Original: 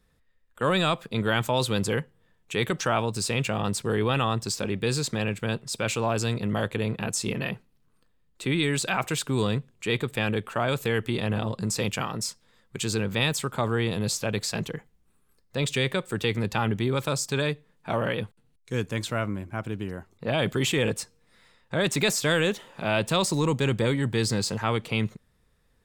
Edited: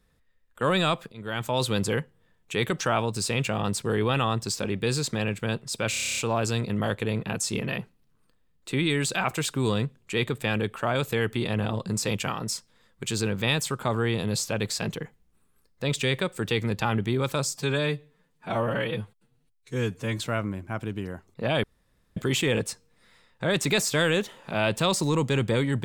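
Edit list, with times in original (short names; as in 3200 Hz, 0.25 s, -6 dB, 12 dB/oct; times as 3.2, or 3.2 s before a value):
1.12–1.64 fade in, from -22.5 dB
5.9 stutter 0.03 s, 10 plays
17.23–19.02 stretch 1.5×
20.47 insert room tone 0.53 s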